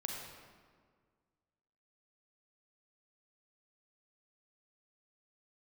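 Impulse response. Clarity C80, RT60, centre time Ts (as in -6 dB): 2.5 dB, 1.8 s, 78 ms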